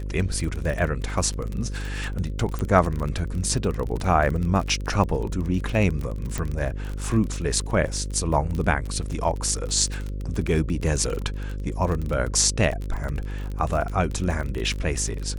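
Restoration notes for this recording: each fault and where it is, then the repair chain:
buzz 50 Hz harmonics 11 -30 dBFS
crackle 32/s -27 dBFS
2.59 pop -16 dBFS
6.38 pop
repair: de-click; de-hum 50 Hz, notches 11

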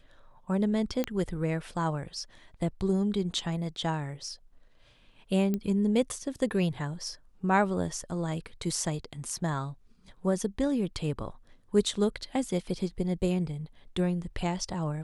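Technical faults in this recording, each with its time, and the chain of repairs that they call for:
1.04 pop -15 dBFS
5.54 pop -18 dBFS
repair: de-click

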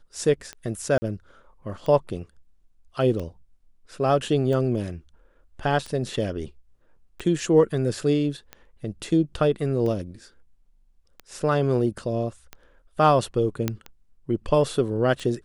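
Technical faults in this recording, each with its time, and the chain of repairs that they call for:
tick 45 rpm -21 dBFS
0.98–1.02 gap 40 ms
5.87–5.88 gap 6.3 ms
13.68 pop -10 dBFS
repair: de-click; interpolate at 0.98, 40 ms; interpolate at 5.87, 6.3 ms

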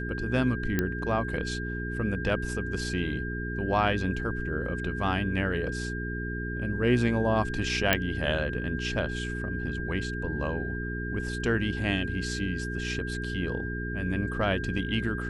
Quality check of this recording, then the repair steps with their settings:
hum 60 Hz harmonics 7 -34 dBFS
tone 1600 Hz -36 dBFS
0.79 pop -12 dBFS
7.93 pop -6 dBFS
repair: de-click; notch 1600 Hz, Q 30; de-hum 60 Hz, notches 7

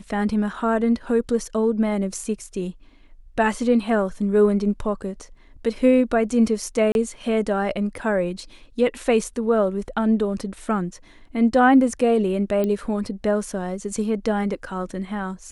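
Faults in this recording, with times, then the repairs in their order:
6.92–6.95 gap 31 ms
12.64 pop -13 dBFS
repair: de-click; interpolate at 6.92, 31 ms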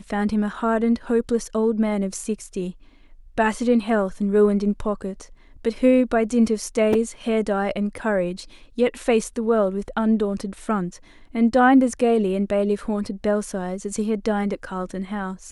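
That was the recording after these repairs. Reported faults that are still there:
none

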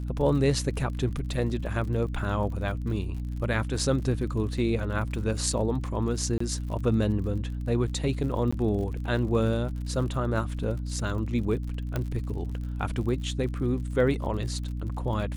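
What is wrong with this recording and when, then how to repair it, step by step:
crackle 54/s -37 dBFS
hum 60 Hz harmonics 5 -32 dBFS
6.38–6.4 gap 24 ms
8.51–8.53 gap 15 ms
11.96 pop -16 dBFS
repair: de-click; de-hum 60 Hz, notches 5; interpolate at 6.38, 24 ms; interpolate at 8.51, 15 ms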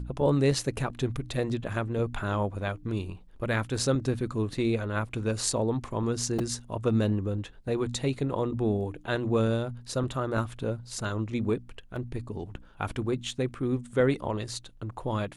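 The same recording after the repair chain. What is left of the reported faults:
11.96 pop

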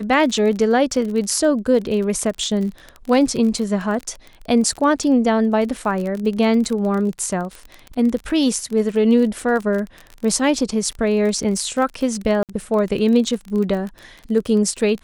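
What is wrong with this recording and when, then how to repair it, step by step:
crackle 31/s -25 dBFS
12.43–12.49 gap 58 ms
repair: de-click; interpolate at 12.43, 58 ms

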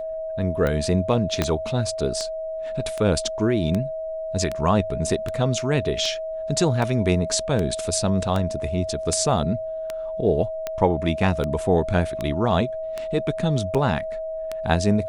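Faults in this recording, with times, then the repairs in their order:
tick 78 rpm -13 dBFS
tone 640 Hz -27 dBFS
1.42 pop -6 dBFS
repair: de-click; notch 640 Hz, Q 30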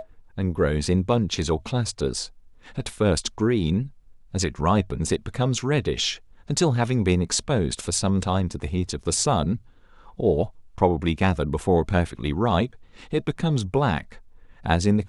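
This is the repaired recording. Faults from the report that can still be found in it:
1.42 pop

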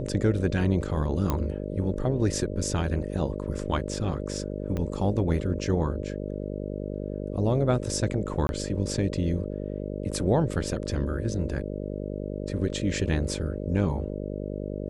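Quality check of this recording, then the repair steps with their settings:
buzz 50 Hz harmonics 12 -33 dBFS
1.3 pop -12 dBFS
4.77 pop -19 dBFS
8.47–8.49 gap 21 ms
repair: de-click; de-hum 50 Hz, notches 12; interpolate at 8.47, 21 ms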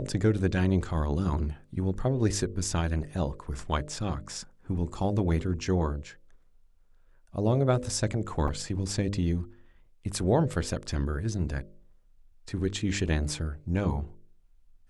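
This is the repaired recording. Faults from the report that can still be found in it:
4.77 pop

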